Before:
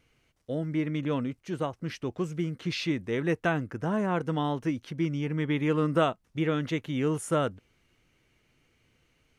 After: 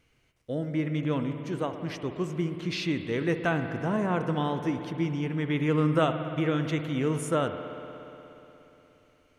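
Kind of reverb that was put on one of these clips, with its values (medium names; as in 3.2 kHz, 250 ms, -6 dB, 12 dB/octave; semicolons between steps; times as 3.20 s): spring tank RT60 3.4 s, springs 59 ms, chirp 55 ms, DRR 7 dB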